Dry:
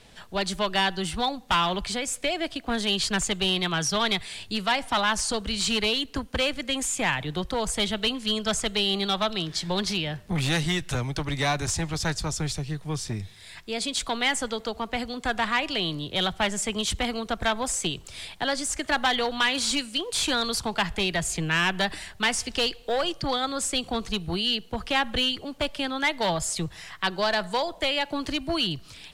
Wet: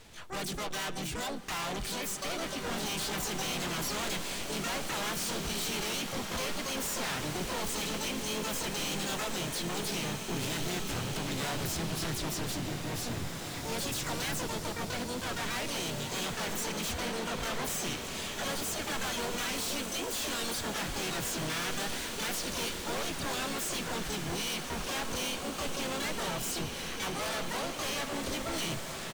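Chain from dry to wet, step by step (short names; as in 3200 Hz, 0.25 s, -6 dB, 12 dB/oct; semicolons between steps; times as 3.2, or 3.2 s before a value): harmoniser -4 st -4 dB, +5 st -7 dB, +12 st -3 dB; overloaded stage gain 29 dB; bloom reverb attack 2.34 s, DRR 3 dB; gain -5 dB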